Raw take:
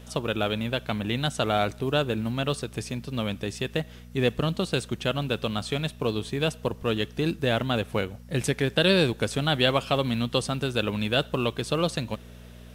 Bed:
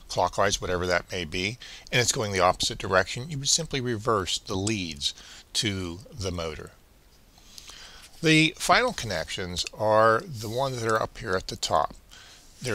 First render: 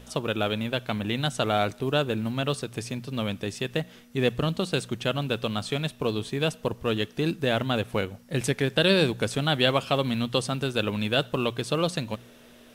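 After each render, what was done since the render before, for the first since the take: de-hum 60 Hz, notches 3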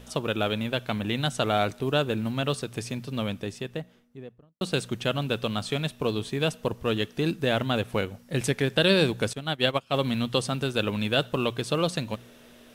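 3.04–4.61 studio fade out; 9.33–9.94 upward expander 2.5:1, over -33 dBFS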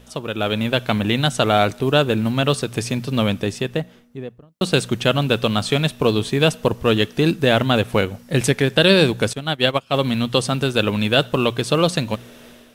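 AGC gain up to 11 dB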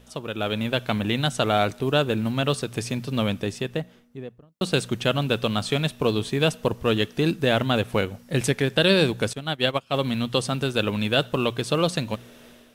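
gain -5 dB

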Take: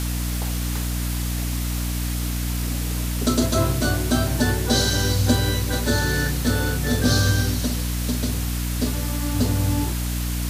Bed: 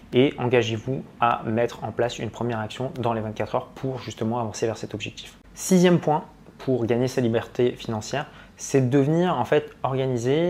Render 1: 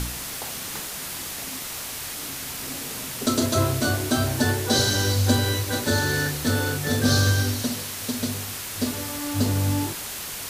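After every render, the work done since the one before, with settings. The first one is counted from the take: de-hum 60 Hz, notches 11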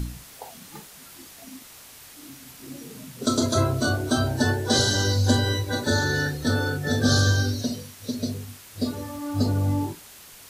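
noise print and reduce 13 dB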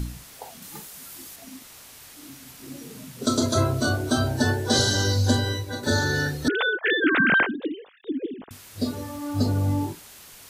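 0.62–1.36 high shelf 7300 Hz +7.5 dB; 5.2–5.83 fade out, to -6.5 dB; 6.48–8.51 sine-wave speech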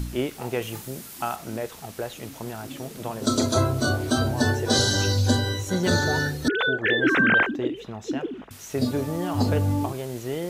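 add bed -8.5 dB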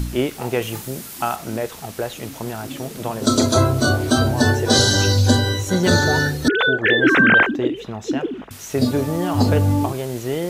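gain +6 dB; limiter -3 dBFS, peak gain reduction 0.5 dB

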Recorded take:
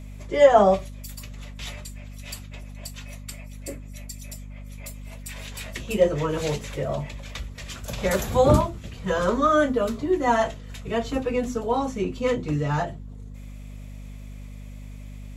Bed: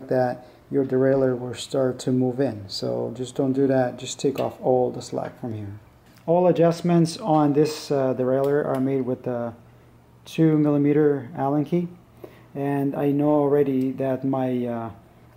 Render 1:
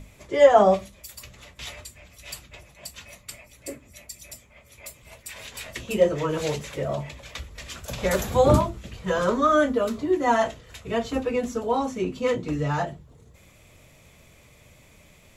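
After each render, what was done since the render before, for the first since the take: notches 50/100/150/200/250 Hz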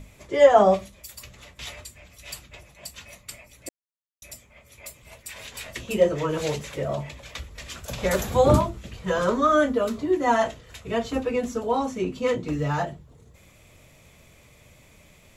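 3.69–4.22 mute; 12.46–12.88 short-mantissa float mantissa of 6-bit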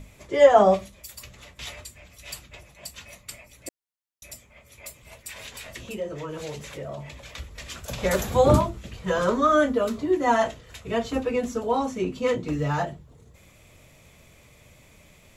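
5.52–7.38 compressor 2:1, threshold -37 dBFS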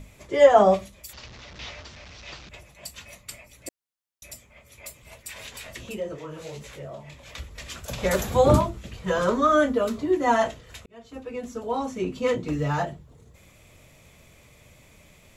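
1.13–2.49 delta modulation 32 kbps, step -38.5 dBFS; 6.15–7.26 detuned doubles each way 52 cents -> 36 cents; 10.86–12.19 fade in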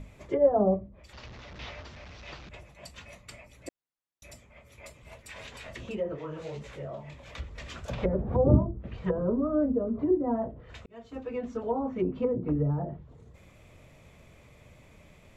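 treble ducked by the level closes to 400 Hz, closed at -21.5 dBFS; high shelf 3300 Hz -11.5 dB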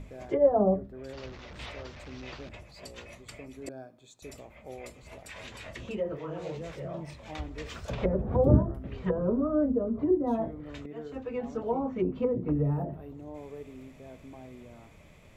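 add bed -24 dB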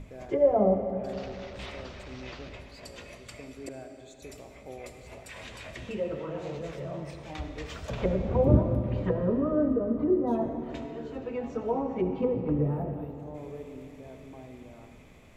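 digital reverb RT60 3 s, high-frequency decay 0.85×, pre-delay 25 ms, DRR 6 dB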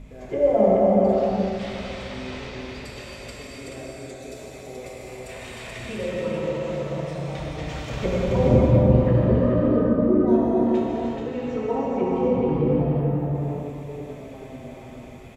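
echo 0.429 s -3.5 dB; non-linear reverb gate 0.41 s flat, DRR -4.5 dB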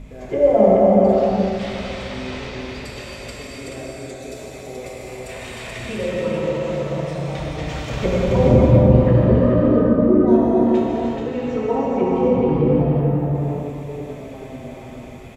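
gain +4.5 dB; limiter -2 dBFS, peak gain reduction 1.5 dB

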